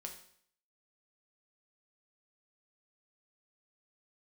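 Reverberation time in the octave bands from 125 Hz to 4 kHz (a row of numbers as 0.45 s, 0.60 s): 0.60 s, 0.60 s, 0.60 s, 0.60 s, 0.60 s, 0.60 s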